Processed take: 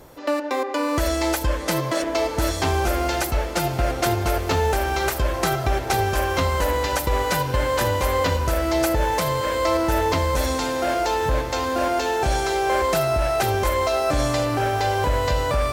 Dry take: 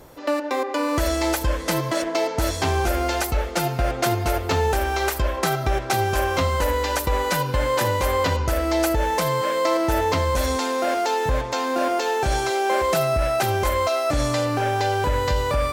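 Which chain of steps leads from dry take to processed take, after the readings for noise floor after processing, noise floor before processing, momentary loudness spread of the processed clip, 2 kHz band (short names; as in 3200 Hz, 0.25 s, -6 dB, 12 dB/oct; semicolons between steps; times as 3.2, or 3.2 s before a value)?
-29 dBFS, -30 dBFS, 3 LU, 0.0 dB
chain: diffused feedback echo 1.377 s, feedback 45%, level -12 dB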